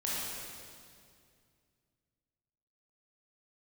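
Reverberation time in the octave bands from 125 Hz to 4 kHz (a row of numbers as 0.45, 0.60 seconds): 3.2, 2.7, 2.4, 2.1, 2.0, 2.0 seconds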